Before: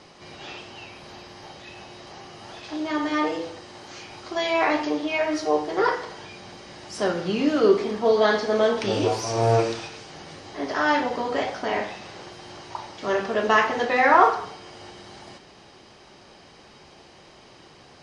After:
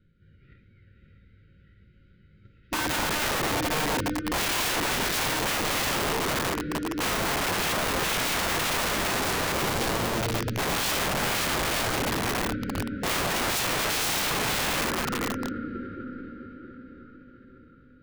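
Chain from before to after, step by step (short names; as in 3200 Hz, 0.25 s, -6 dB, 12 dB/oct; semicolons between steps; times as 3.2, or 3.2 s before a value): RIAA curve playback; gate -32 dBFS, range -25 dB; Chebyshev band-stop 550–1400 Hz, order 5; tone controls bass +5 dB, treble -3 dB; de-hum 71.7 Hz, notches 18; compressor 10:1, threshold -19 dBFS, peak gain reduction 14 dB; on a send: diffused feedback echo 0.56 s, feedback 49%, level -4.5 dB; on the sum: wrapped overs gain 26.5 dB; formant shift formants -5 st; gain +4.5 dB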